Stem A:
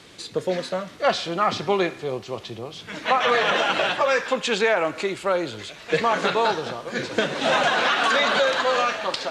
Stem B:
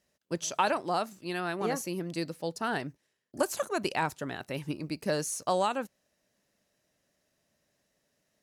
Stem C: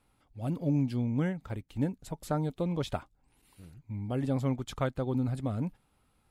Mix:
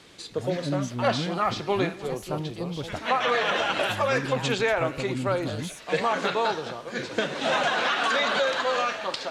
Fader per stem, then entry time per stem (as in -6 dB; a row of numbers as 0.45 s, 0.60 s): -4.0 dB, -8.5 dB, -1.5 dB; 0.00 s, 0.40 s, 0.00 s